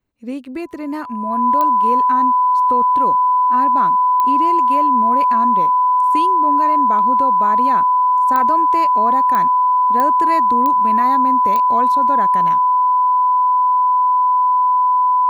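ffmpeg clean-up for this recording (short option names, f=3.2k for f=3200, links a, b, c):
-af "adeclick=t=4,bandreject=f=1k:w=30"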